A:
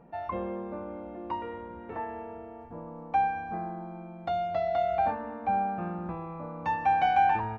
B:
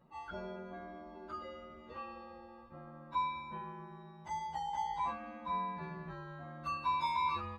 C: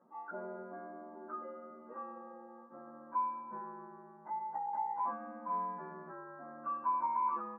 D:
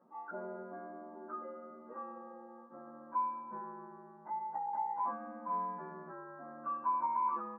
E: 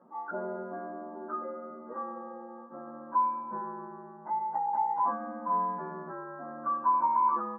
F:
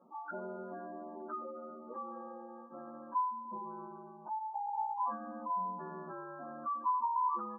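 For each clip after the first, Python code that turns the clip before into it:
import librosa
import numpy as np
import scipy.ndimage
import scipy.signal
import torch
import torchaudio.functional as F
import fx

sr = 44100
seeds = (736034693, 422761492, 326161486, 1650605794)

y1 = fx.partial_stretch(x, sr, pct=121)
y1 = F.gain(torch.from_numpy(y1), -7.5).numpy()
y2 = scipy.signal.sosfilt(scipy.signal.ellip(3, 1.0, 40, [220.0, 1500.0], 'bandpass', fs=sr, output='sos'), y1)
y2 = F.gain(torch.from_numpy(y2), 1.5).numpy()
y3 = fx.air_absorb(y2, sr, metres=200.0)
y3 = F.gain(torch.from_numpy(y3), 1.0).numpy()
y4 = scipy.signal.sosfilt(scipy.signal.butter(4, 1900.0, 'lowpass', fs=sr, output='sos'), y3)
y4 = F.gain(torch.from_numpy(y4), 7.5).numpy()
y5 = fx.spec_gate(y4, sr, threshold_db=-20, keep='strong')
y5 = fx.dynamic_eq(y5, sr, hz=650.0, q=0.83, threshold_db=-39.0, ratio=4.0, max_db=-4)
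y5 = F.gain(torch.from_numpy(y5), -4.0).numpy()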